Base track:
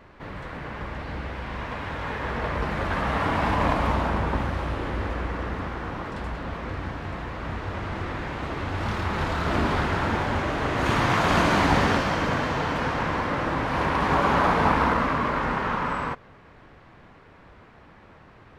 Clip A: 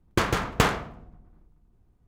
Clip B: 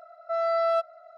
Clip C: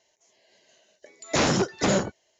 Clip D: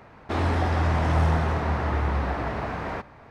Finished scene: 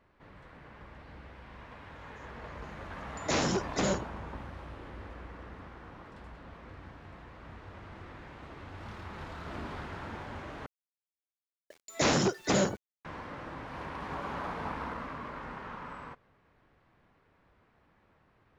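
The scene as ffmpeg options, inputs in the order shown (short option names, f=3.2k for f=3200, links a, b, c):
-filter_complex "[3:a]asplit=2[a][b];[0:a]volume=-16.5dB[c];[b]aeval=exprs='val(0)*gte(abs(val(0)),0.00398)':c=same[d];[c]asplit=2[e][f];[e]atrim=end=10.664[g];[d]atrim=end=2.39,asetpts=PTS-STARTPTS,volume=-4dB[h];[f]atrim=start=13.046[i];[a]atrim=end=2.39,asetpts=PTS-STARTPTS,volume=-7dB,afade=t=in:d=0.004:c=hsin,afade=t=out:st=2.386:d=0.004:c=hsin,adelay=1950[j];[g][h]acrossfade=d=0.004:c1=hsin:c2=hsin[k];[k][i]acrossfade=d=0.004:c1=hsin:c2=hsin[l];[l][j]amix=inputs=2:normalize=0"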